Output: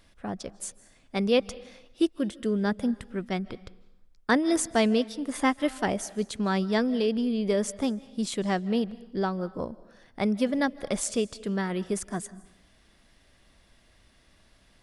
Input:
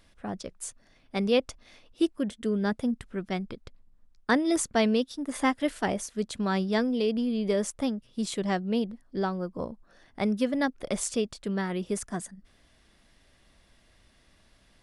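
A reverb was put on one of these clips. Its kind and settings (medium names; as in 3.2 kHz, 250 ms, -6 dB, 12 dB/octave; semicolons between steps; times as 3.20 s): algorithmic reverb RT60 0.85 s, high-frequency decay 0.9×, pre-delay 115 ms, DRR 19.5 dB; trim +1 dB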